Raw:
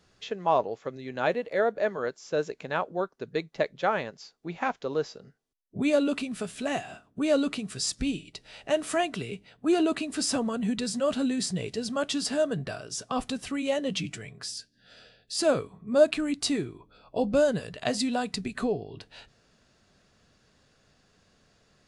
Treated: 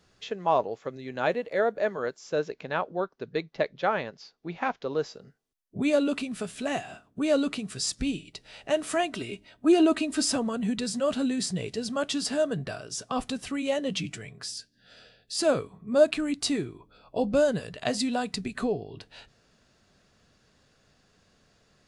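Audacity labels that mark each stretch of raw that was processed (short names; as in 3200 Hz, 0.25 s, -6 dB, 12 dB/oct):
2.390000	4.990000	LPF 5800 Hz 24 dB/oct
9.140000	10.320000	comb 3.2 ms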